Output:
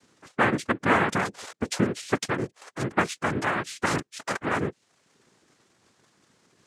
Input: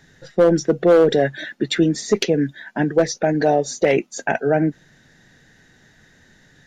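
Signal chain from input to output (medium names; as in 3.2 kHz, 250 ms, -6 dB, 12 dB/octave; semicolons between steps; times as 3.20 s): reverb removal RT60 0.62 s; noise-vocoded speech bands 3; 2.18–2.62 s: transient shaper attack -1 dB, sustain -7 dB; trim -8 dB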